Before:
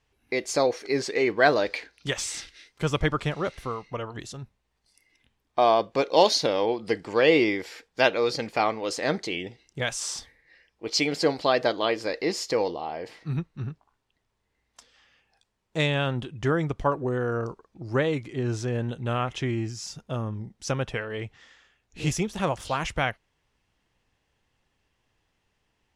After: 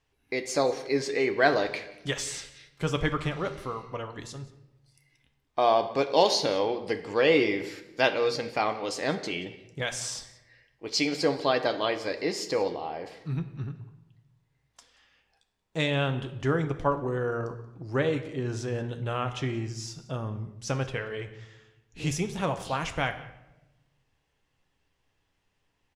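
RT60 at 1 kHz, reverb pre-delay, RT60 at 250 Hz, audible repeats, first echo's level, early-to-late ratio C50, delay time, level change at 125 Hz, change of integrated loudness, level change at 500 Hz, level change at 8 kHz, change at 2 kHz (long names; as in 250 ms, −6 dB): 0.85 s, 6 ms, 1.3 s, 1, −21.5 dB, 11.5 dB, 180 ms, −2.0 dB, −2.0 dB, −2.0 dB, −2.5 dB, −2.0 dB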